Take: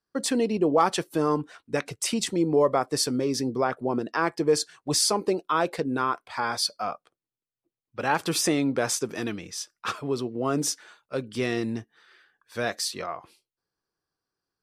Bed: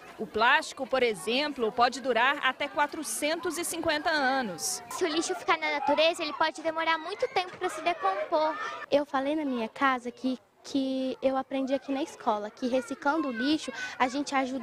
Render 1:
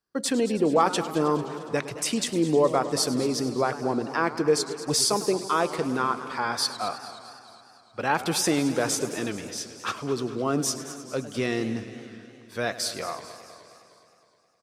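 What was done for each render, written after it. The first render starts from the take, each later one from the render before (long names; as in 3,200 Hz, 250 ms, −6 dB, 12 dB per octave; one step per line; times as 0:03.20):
repeating echo 222 ms, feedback 54%, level −16.5 dB
feedback echo with a swinging delay time 104 ms, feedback 79%, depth 182 cents, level −15.5 dB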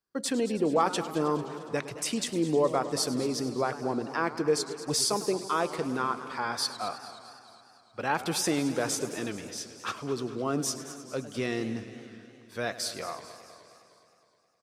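level −4 dB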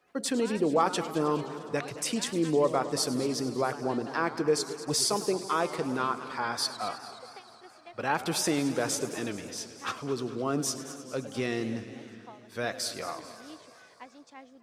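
mix in bed −21.5 dB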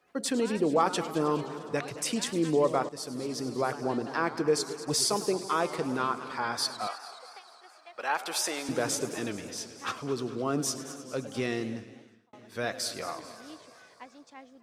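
0:02.89–0:03.69: fade in linear, from −13.5 dB
0:06.87–0:08.69: high-pass filter 590 Hz
0:11.51–0:12.33: fade out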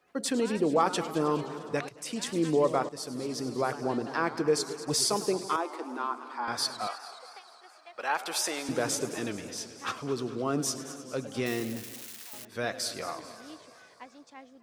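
0:01.89–0:02.38: fade in, from −15.5 dB
0:05.56–0:06.48: Chebyshev high-pass with heavy ripple 230 Hz, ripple 9 dB
0:11.46–0:12.45: spike at every zero crossing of −30.5 dBFS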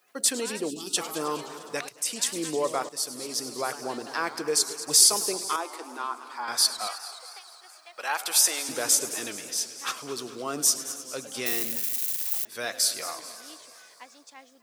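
0:00.70–0:00.97: gain on a spectral selection 440–2,500 Hz −26 dB
RIAA equalisation recording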